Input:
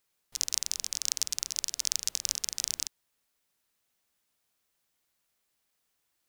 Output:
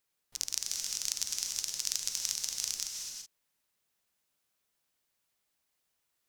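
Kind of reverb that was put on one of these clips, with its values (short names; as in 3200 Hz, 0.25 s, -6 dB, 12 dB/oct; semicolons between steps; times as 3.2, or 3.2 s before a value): non-linear reverb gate 0.4 s rising, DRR 2.5 dB; gain -4 dB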